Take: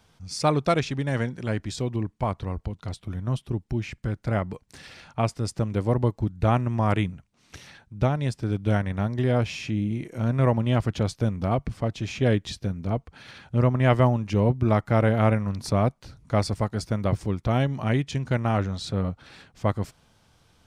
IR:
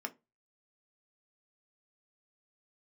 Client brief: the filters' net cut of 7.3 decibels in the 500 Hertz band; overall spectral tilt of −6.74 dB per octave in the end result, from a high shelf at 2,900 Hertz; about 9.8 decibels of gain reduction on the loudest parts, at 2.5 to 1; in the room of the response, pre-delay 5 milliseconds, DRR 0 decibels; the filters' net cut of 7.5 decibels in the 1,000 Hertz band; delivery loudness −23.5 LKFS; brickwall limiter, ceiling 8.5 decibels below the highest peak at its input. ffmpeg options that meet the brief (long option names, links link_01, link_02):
-filter_complex "[0:a]equalizer=frequency=500:width_type=o:gain=-7,equalizer=frequency=1000:width_type=o:gain=-7,highshelf=frequency=2900:gain=-5,acompressor=threshold=-33dB:ratio=2.5,alimiter=level_in=4.5dB:limit=-24dB:level=0:latency=1,volume=-4.5dB,asplit=2[link_01][link_02];[1:a]atrim=start_sample=2205,adelay=5[link_03];[link_02][link_03]afir=irnorm=-1:irlink=0,volume=-0.5dB[link_04];[link_01][link_04]amix=inputs=2:normalize=0,volume=12.5dB"